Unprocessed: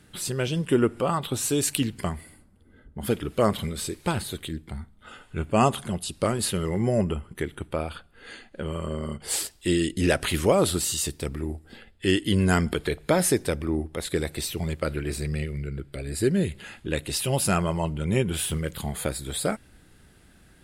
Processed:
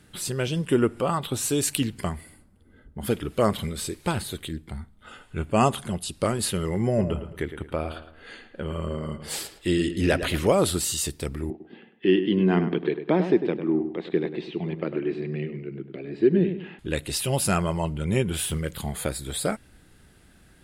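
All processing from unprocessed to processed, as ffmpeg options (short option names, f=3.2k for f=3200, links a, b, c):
-filter_complex "[0:a]asettb=1/sr,asplit=3[a][b][c];[a]atrim=end=6.874[d];[b]atrim=start=6.87:end=10.47,asetpts=PTS-STARTPTS,afade=t=in:d=0.004:c=qsin,afade=t=out:st=3.596:d=0.004:c=qsin,equalizer=f=8.8k:w=0.83:g=-7,asplit=2[e][f];[f]adelay=110,lowpass=f=2.7k:p=1,volume=-10dB,asplit=2[g][h];[h]adelay=110,lowpass=f=2.7k:p=1,volume=0.38,asplit=2[i][j];[j]adelay=110,lowpass=f=2.7k:p=1,volume=0.38,asplit=2[k][l];[l]adelay=110,lowpass=f=2.7k:p=1,volume=0.38[m];[e][g][i][k][m]amix=inputs=5:normalize=0,atrim=end_sample=158760[n];[c]atrim=start=10.466[o];[d][n]acrossfade=d=0.004:c1=hsin:c2=qsin[p];[p][o]acrossfade=d=0.004:c1=qsin:c2=hsin,asettb=1/sr,asplit=3[q][r][s];[q]atrim=end=11.504[t];[r]atrim=start=11.5:end=16.79,asetpts=PTS-STARTPTS,afade=t=in:d=0.004:c=qsin,afade=t=out:st=5.286:d=0.004:c=qsin,highpass=f=170:w=0.5412,highpass=f=170:w=1.3066,equalizer=f=170:t=q:w=4:g=4,equalizer=f=350:t=q:w=4:g=7,equalizer=f=560:t=q:w=4:g=-6,equalizer=f=1.4k:t=q:w=4:g=-9,equalizer=f=2.1k:t=q:w=4:g=-4,lowpass=f=2.9k:w=0.5412,lowpass=f=2.9k:w=1.3066,asplit=2[u][v];[v]adelay=100,lowpass=f=2.2k:p=1,volume=-9dB,asplit=2[w][x];[x]adelay=100,lowpass=f=2.2k:p=1,volume=0.36,asplit=2[y][z];[z]adelay=100,lowpass=f=2.2k:p=1,volume=0.36,asplit=2[aa][ab];[ab]adelay=100,lowpass=f=2.2k:p=1,volume=0.36[ac];[u][w][y][aa][ac]amix=inputs=5:normalize=0,atrim=end_sample=233289[ad];[s]atrim=start=16.786[ae];[t][ad]acrossfade=d=0.004:c1=hsin:c2=qsin[af];[af][ae]acrossfade=d=0.004:c1=qsin:c2=hsin"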